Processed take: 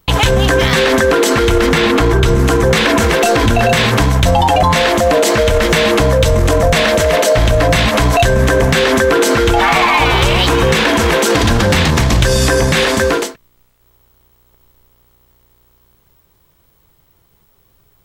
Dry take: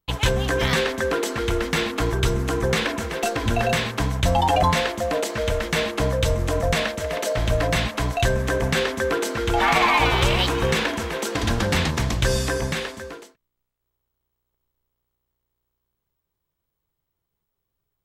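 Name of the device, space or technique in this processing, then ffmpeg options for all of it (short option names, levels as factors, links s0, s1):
loud club master: -filter_complex "[0:a]asettb=1/sr,asplit=3[s0][s1][s2];[s0]atrim=end=1.664[s3];[s1]atrim=start=1.66:end=2.35,asetpts=PTS-STARTPTS,afade=t=in:d=0.004:c=qsin,afade=t=out:st=0.686:d=0.004:c=qsin,highshelf=f=4500:g=-6[s4];[s2]atrim=start=2.346[s5];[s3][s4]acrossfade=d=0.004:c1=hsin:c2=qsin[s6];[s6][s5]acrossfade=d=0.004:c1=qsin:c2=hsin,acompressor=threshold=0.0794:ratio=3,asoftclip=type=hard:threshold=0.15,alimiter=level_in=25.1:limit=0.891:release=50:level=0:latency=1,volume=0.708"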